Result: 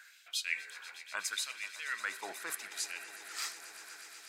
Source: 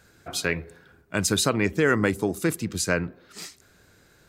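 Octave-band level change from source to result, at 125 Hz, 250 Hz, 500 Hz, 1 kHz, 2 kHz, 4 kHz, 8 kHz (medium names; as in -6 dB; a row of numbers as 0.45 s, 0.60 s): under -40 dB, -35.5 dB, -27.5 dB, -12.5 dB, -9.0 dB, -7.5 dB, -9.5 dB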